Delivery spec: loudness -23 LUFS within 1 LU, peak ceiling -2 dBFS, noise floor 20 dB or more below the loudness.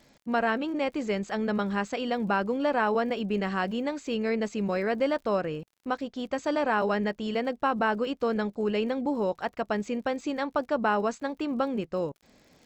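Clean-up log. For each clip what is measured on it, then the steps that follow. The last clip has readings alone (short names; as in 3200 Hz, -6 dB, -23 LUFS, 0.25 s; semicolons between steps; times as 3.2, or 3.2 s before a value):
ticks 54/s; loudness -29.0 LUFS; peak -14.0 dBFS; loudness target -23.0 LUFS
-> de-click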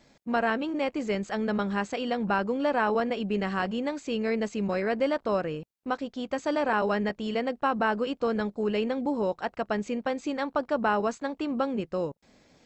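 ticks 0/s; loudness -29.0 LUFS; peak -14.0 dBFS; loudness target -23.0 LUFS
-> gain +6 dB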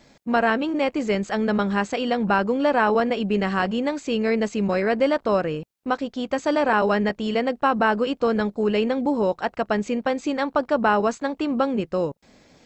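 loudness -23.0 LUFS; peak -8.0 dBFS; noise floor -59 dBFS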